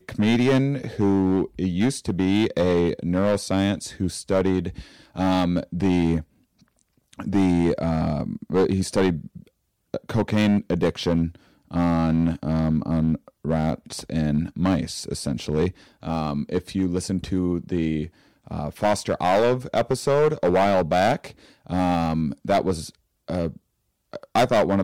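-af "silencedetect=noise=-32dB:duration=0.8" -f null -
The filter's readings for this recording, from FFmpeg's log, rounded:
silence_start: 6.21
silence_end: 7.13 | silence_duration: 0.92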